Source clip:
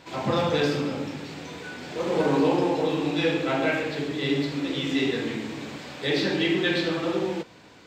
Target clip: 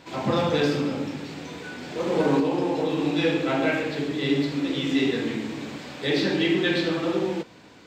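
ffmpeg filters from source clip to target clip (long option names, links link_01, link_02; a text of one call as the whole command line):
ffmpeg -i in.wav -filter_complex "[0:a]equalizer=frequency=250:width=1.3:gain=3,asettb=1/sr,asplit=3[link_01][link_02][link_03];[link_01]atrim=end=2.394[link_04];[link_02]atrim=start=2.39:end=2.99,asetpts=PTS-STARTPTS,afade=type=in:duration=0.004:curve=qsin,afade=type=out:start_time=0.596:duration=0.004:curve=qsin,acompressor=threshold=-20dB:ratio=6[link_05];[link_03]atrim=start=2.986[link_06];[link_04][link_05]acrossfade=duration=0.004:curve1=hsin:curve2=qsin[link_07];[link_07][link_06]acrossfade=duration=0.004:curve1=qsin:curve2=hsin" out.wav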